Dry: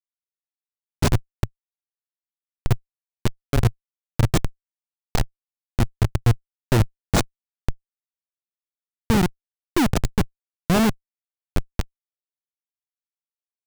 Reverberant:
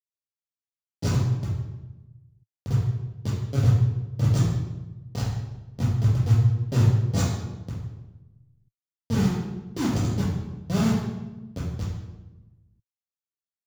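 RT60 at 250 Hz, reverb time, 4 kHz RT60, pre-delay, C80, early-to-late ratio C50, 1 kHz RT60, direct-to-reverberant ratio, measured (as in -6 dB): 1.5 s, 1.1 s, 0.80 s, 3 ms, 4.0 dB, 0.0 dB, 0.95 s, -8.5 dB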